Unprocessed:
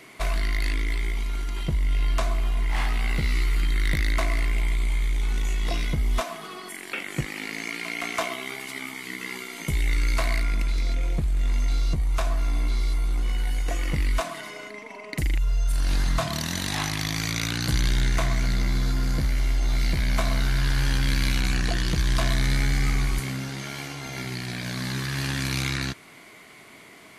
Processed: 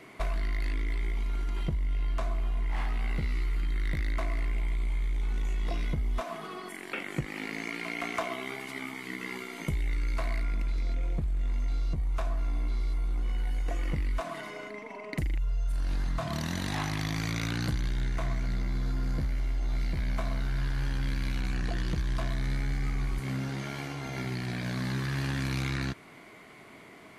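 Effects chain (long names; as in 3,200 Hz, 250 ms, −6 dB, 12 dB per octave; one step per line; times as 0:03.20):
high-shelf EQ 2,500 Hz −10.5 dB
downward compressor 5 to 1, threshold −27 dBFS, peak gain reduction 8 dB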